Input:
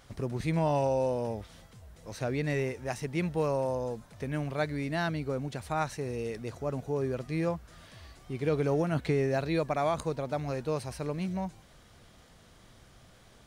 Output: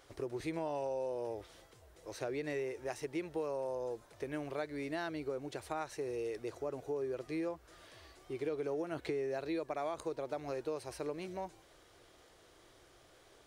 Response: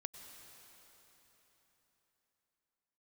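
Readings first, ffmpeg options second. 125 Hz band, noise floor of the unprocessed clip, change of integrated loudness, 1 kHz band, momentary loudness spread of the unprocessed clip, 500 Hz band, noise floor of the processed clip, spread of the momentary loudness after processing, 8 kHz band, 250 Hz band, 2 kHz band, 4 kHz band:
−18.0 dB, −57 dBFS, −8.0 dB, −8.5 dB, 11 LU, −6.5 dB, −63 dBFS, 9 LU, −6.5 dB, −8.5 dB, −8.0 dB, −7.5 dB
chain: -af "lowshelf=frequency=270:width_type=q:width=3:gain=-7.5,acompressor=threshold=-31dB:ratio=4,volume=-4dB"

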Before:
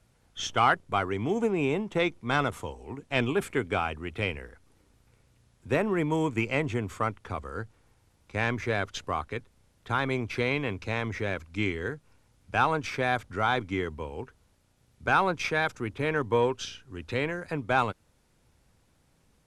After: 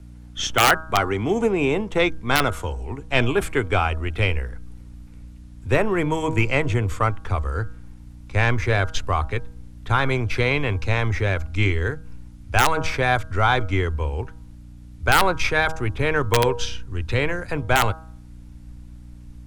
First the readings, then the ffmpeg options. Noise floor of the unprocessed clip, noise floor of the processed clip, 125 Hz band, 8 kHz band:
−67 dBFS, −42 dBFS, +11.0 dB, +12.0 dB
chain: -filter_complex "[0:a]asubboost=boost=10.5:cutoff=60,aeval=exprs='val(0)+0.00398*(sin(2*PI*60*n/s)+sin(2*PI*2*60*n/s)/2+sin(2*PI*3*60*n/s)/3+sin(2*PI*4*60*n/s)/4+sin(2*PI*5*60*n/s)/5)':channel_layout=same,acrossover=split=130|1400|1600[link_01][link_02][link_03][link_04];[link_02]aeval=exprs='(mod(6.68*val(0)+1,2)-1)/6.68':channel_layout=same[link_05];[link_01][link_05][link_03][link_04]amix=inputs=4:normalize=0,bandreject=frequency=159.4:width_type=h:width=4,bandreject=frequency=318.8:width_type=h:width=4,bandreject=frequency=478.2:width_type=h:width=4,bandreject=frequency=637.6:width_type=h:width=4,bandreject=frequency=797:width_type=h:width=4,bandreject=frequency=956.4:width_type=h:width=4,bandreject=frequency=1115.8:width_type=h:width=4,bandreject=frequency=1275.2:width_type=h:width=4,bandreject=frequency=1434.6:width_type=h:width=4,bandreject=frequency=1594:width_type=h:width=4,volume=7.5dB"

